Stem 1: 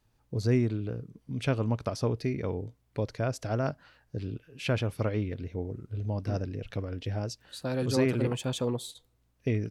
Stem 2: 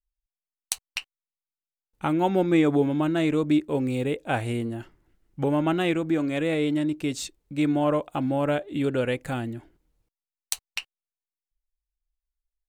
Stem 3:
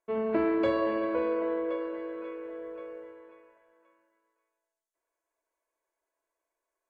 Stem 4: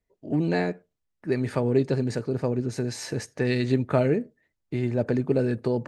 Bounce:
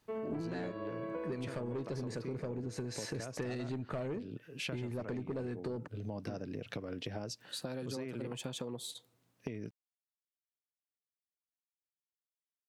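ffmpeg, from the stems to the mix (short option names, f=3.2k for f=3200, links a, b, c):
-filter_complex "[0:a]highpass=f=130:w=0.5412,highpass=f=130:w=1.3066,acompressor=threshold=-36dB:ratio=4,volume=2.5dB[a];[2:a]volume=-6.5dB[b];[3:a]asoftclip=type=tanh:threshold=-19.5dB,volume=0dB[c];[a][b][c]amix=inputs=3:normalize=0,acompressor=threshold=-36dB:ratio=10"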